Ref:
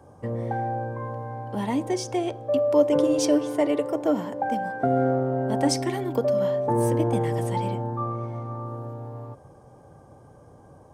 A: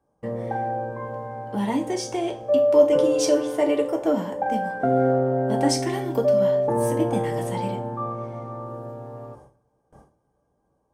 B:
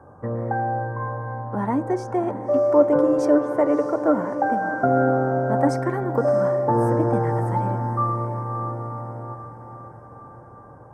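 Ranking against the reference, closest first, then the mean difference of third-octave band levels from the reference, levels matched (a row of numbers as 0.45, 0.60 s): A, B; 3.0, 4.5 dB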